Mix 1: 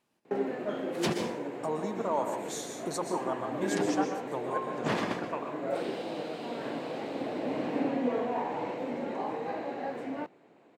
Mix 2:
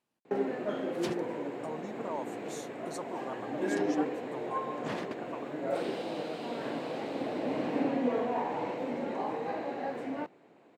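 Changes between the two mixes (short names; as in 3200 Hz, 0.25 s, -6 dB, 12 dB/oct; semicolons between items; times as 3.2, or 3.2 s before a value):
speech -5.5 dB; reverb: off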